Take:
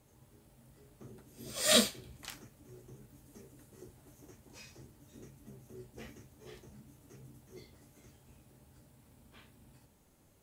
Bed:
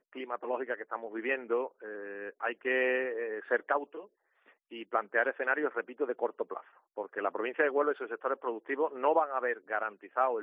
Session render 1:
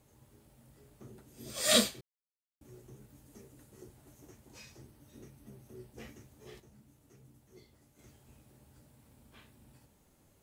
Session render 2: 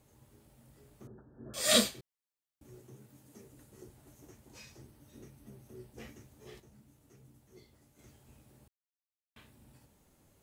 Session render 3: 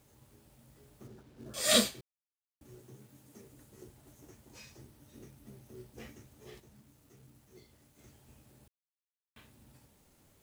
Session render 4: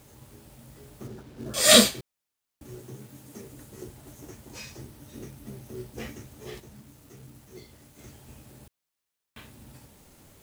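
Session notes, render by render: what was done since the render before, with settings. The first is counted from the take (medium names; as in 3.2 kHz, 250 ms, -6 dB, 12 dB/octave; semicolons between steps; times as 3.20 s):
2.01–2.61 s: mute; 4.81–5.92 s: band-stop 7.1 kHz, Q 6.2; 6.60–7.99 s: gain -5.5 dB
1.07–1.54 s: brick-wall FIR low-pass 1.8 kHz; 2.80–3.45 s: high-pass 95 Hz 24 dB/octave; 8.68–9.36 s: mute
companded quantiser 6-bit
trim +11 dB; peak limiter -3 dBFS, peak gain reduction 1.5 dB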